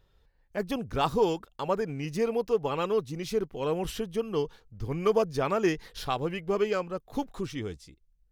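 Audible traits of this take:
background noise floor −67 dBFS
spectral slope −5.0 dB per octave

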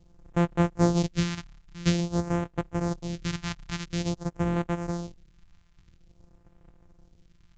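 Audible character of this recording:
a buzz of ramps at a fixed pitch in blocks of 256 samples
phaser sweep stages 2, 0.49 Hz, lowest notch 430–4,800 Hz
mu-law

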